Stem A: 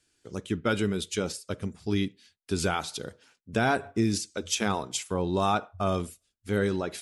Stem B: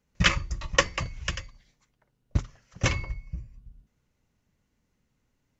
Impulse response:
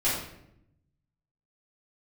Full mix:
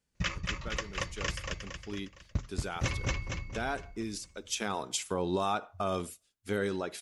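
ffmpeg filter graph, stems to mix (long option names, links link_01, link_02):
-filter_complex "[0:a]lowshelf=frequency=200:gain=-9,volume=-5dB,afade=type=in:start_time=4.43:duration=0.61:silence=0.298538[link_01];[1:a]volume=-9dB,asplit=2[link_02][link_03];[link_03]volume=-5.5dB,aecho=0:1:230|460|690|920|1150|1380|1610:1|0.49|0.24|0.118|0.0576|0.0282|0.0138[link_04];[link_01][link_02][link_04]amix=inputs=3:normalize=0,dynaudnorm=framelen=490:gausssize=5:maxgain=7dB,alimiter=limit=-19.5dB:level=0:latency=1:release=201"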